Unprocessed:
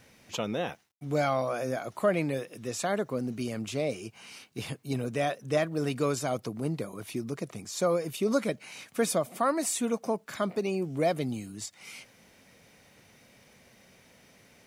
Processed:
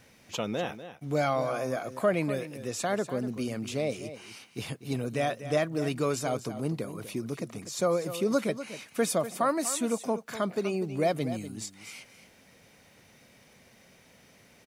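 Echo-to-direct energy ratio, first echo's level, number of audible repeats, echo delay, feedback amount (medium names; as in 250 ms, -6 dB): -12.5 dB, -12.5 dB, 1, 245 ms, no regular repeats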